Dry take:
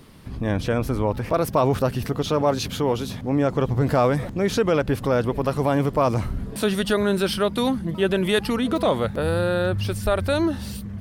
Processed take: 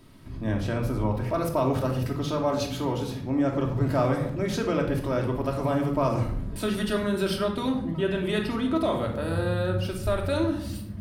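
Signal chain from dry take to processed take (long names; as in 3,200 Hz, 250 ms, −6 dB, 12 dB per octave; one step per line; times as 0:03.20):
0:07.39–0:08.81: high-shelf EQ 6,700 Hz −8 dB
convolution reverb RT60 0.75 s, pre-delay 3 ms, DRR 0.5 dB
level −8 dB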